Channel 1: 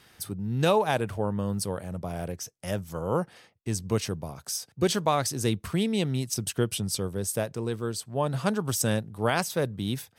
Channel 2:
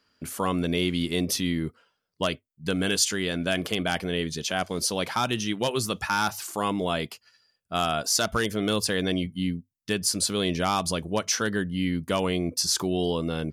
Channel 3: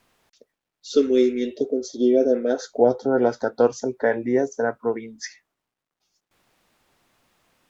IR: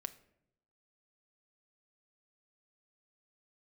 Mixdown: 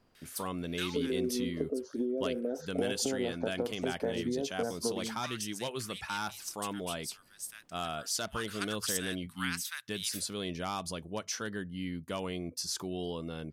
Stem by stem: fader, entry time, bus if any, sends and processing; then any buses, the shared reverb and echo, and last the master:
-0.5 dB, 0.15 s, bus A, no send, inverse Chebyshev high-pass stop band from 540 Hz, stop band 50 dB; auto duck -9 dB, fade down 1.45 s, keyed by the third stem
-11.0 dB, 0.00 s, no bus, no send, none
-7.0 dB, 0.00 s, bus A, no send, tilt shelf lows +8.5 dB; peak limiter -8.5 dBFS, peak gain reduction 8.5 dB
bus A: 0.0 dB, compression 5:1, threshold -31 dBFS, peak gain reduction 11 dB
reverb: none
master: none

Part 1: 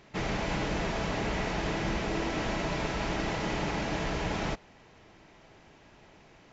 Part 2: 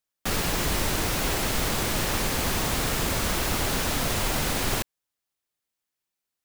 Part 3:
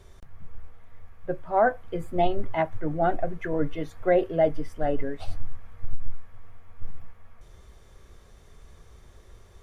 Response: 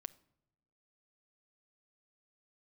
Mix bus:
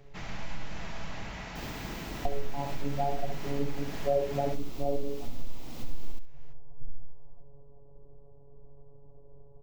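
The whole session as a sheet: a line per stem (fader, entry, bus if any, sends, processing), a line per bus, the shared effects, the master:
-7.5 dB, 0.00 s, no send, no echo send, peaking EQ 390 Hz -10 dB 1.2 oct; companded quantiser 8-bit
-14.5 dB, 1.30 s, no send, echo send -4.5 dB, fifteen-band graphic EQ 250 Hz +9 dB, 1.6 kHz -10 dB, 10 kHz -11 dB; auto duck -6 dB, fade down 0.65 s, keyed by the third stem
+1.5 dB, 0.00 s, muted 1.23–2.25 s, no send, echo send -6.5 dB, steep low-pass 820 Hz 36 dB/octave; robot voice 141 Hz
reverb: none
echo: feedback delay 66 ms, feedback 19%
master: compression 2:1, threshold -27 dBFS, peak gain reduction 9.5 dB

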